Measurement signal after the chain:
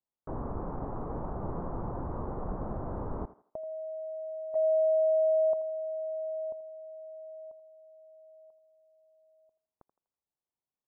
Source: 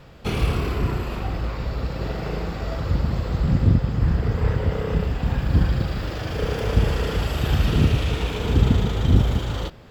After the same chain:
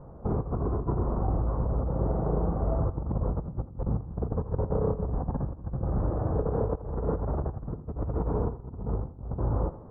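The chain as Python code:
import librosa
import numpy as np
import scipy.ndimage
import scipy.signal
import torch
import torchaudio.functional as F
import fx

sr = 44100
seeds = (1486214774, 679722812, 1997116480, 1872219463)

p1 = scipy.signal.sosfilt(scipy.signal.butter(6, 1100.0, 'lowpass', fs=sr, output='sos'), x)
p2 = fx.over_compress(p1, sr, threshold_db=-25.0, ratio=-0.5)
p3 = p2 + fx.echo_thinned(p2, sr, ms=82, feedback_pct=35, hz=270.0, wet_db=-14, dry=0)
y = F.gain(torch.from_numpy(p3), -3.5).numpy()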